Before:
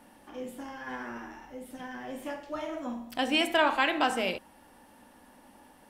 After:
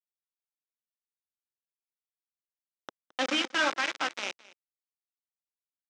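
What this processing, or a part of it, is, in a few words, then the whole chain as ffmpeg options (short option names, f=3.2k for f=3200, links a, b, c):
hand-held game console: -filter_complex "[0:a]asettb=1/sr,asplit=3[a][b][c];[a]atrim=end=2.884[d];[b]atrim=start=2.88:end=3.77,asetpts=PTS-STARTPTS,afade=t=in:d=0.004:c=qsin,afade=t=out:st=0.886:d=0.004:c=qsin,aecho=1:1:3.8:0.92,atrim=end_sample=39249[e];[c]atrim=start=3.766[f];[d][e]acrossfade=d=0.004:c1=hsin:c2=qsin[g];[g][f]acrossfade=d=0.004:c1=qsin:c2=hsin,acrusher=bits=3:mix=0:aa=0.000001,highpass=420,equalizer=f=440:t=q:w=4:g=-8,equalizer=f=720:t=q:w=4:g=-9,equalizer=f=1k:t=q:w=4:g=-6,equalizer=f=1.7k:t=q:w=4:g=-3,equalizer=f=2.8k:t=q:w=4:g=-4,equalizer=f=4.4k:t=q:w=4:g=-7,lowpass=f=5.4k:w=0.5412,lowpass=f=5.4k:w=1.3066,aecho=1:1:217:0.0891"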